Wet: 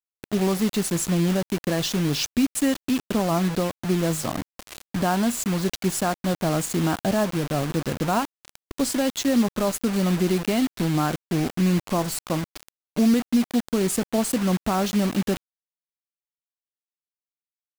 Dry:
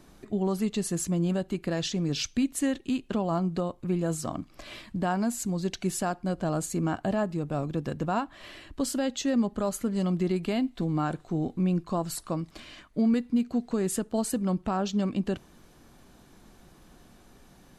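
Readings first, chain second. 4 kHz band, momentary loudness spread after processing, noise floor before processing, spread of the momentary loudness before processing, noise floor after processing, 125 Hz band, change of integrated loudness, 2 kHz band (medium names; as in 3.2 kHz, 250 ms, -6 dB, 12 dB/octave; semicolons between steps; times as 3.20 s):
+8.0 dB, 6 LU, -56 dBFS, 6 LU, under -85 dBFS, +5.0 dB, +5.5 dB, +8.0 dB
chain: bit crusher 6-bit; trim +5 dB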